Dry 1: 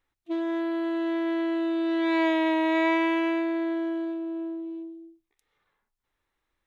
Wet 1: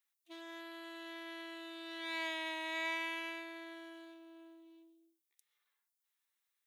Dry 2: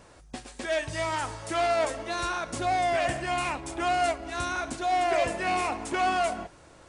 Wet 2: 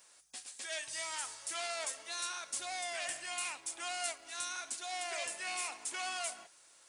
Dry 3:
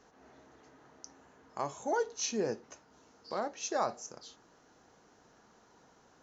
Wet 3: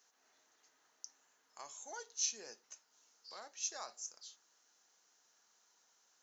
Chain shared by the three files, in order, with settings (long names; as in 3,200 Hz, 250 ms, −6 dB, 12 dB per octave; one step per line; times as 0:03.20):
first difference
level +2 dB